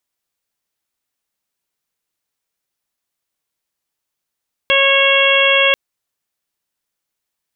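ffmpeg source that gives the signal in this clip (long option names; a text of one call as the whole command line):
ffmpeg -f lavfi -i "aevalsrc='0.158*sin(2*PI*549*t)+0.0891*sin(2*PI*1098*t)+0.1*sin(2*PI*1647*t)+0.15*sin(2*PI*2196*t)+0.178*sin(2*PI*2745*t)+0.15*sin(2*PI*3294*t)':duration=1.04:sample_rate=44100" out.wav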